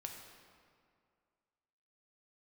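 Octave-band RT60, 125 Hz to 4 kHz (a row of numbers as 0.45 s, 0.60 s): 2.1 s, 2.2 s, 2.2 s, 2.2 s, 1.8 s, 1.4 s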